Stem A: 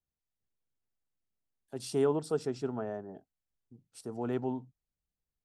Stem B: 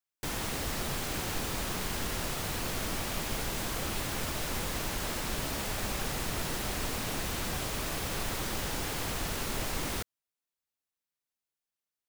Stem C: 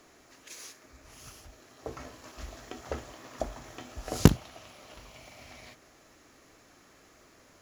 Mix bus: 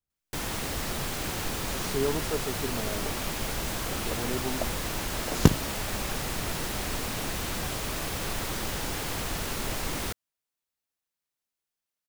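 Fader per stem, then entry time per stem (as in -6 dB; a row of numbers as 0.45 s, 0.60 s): -0.5 dB, +2.0 dB, -0.5 dB; 0.00 s, 0.10 s, 1.20 s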